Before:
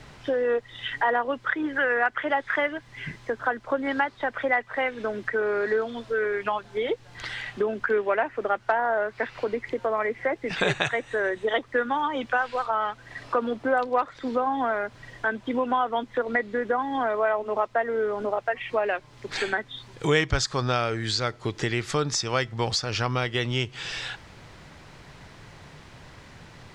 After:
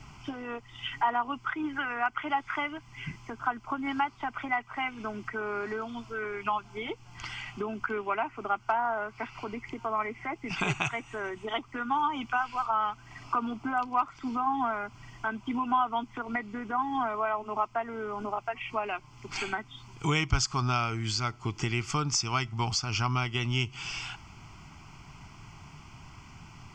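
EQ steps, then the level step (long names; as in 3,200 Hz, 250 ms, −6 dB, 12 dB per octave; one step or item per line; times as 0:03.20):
phaser with its sweep stopped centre 2,600 Hz, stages 8
0.0 dB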